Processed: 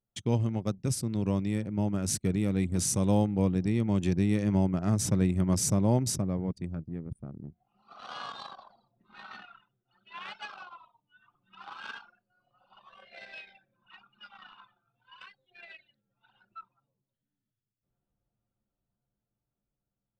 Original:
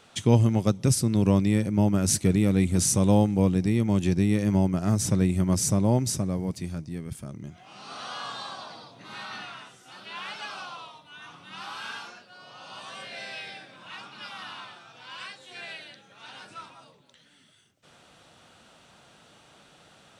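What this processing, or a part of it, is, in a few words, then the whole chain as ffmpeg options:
voice memo with heavy noise removal: -af "anlmdn=3.98,dynaudnorm=f=820:g=7:m=6.5dB,volume=-8dB"

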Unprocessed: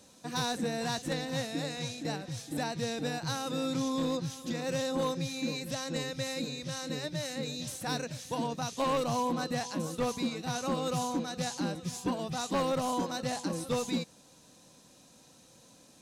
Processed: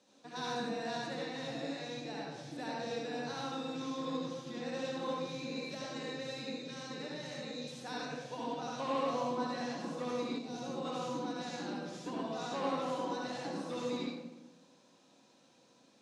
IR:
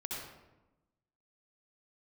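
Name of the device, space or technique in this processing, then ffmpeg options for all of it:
supermarket ceiling speaker: -filter_complex "[0:a]highpass=230,lowpass=5k[a];[1:a]atrim=start_sample=2205[b];[a][b]afir=irnorm=-1:irlink=0,asettb=1/sr,asplit=3[c][d][e];[c]atrim=end=10.384[f];[d]atrim=start=10.38:end=10.85,asetpts=PTS-STARTPTS,afade=t=in:d=0.004:c=qsin,afade=t=out:st=0.466:d=0.004:c=qsin,equalizer=f=1.6k:w=0.72:g=-10[g];[e]atrim=start=10.846[h];[f][g]acrossfade=d=0.004:c1=hsin:c2=qsin[i];[i][h]acrossfade=d=0.004:c1=qsin:c2=hsin,volume=-5dB"

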